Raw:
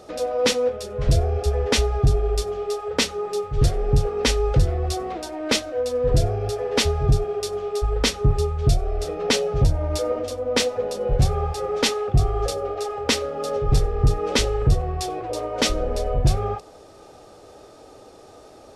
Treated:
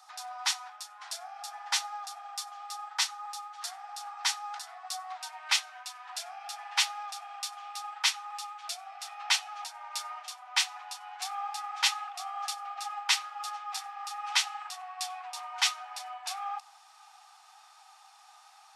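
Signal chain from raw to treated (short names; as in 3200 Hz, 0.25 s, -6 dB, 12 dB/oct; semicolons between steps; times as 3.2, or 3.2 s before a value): bell 2600 Hz -5 dB, from 5.21 s +2 dB; steep high-pass 760 Hz 96 dB/oct; gain -4 dB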